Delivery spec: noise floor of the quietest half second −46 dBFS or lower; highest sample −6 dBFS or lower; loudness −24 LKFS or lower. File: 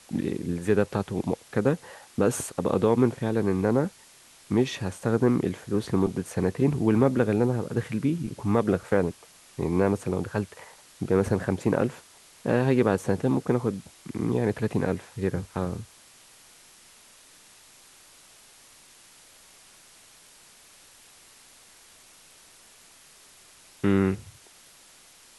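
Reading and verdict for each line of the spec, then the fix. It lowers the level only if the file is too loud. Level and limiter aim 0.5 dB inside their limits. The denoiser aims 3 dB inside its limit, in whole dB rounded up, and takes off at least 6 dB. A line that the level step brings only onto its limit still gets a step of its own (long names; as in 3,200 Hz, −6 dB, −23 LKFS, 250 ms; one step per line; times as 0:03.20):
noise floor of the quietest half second −54 dBFS: in spec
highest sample −7.0 dBFS: in spec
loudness −26.5 LKFS: in spec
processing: no processing needed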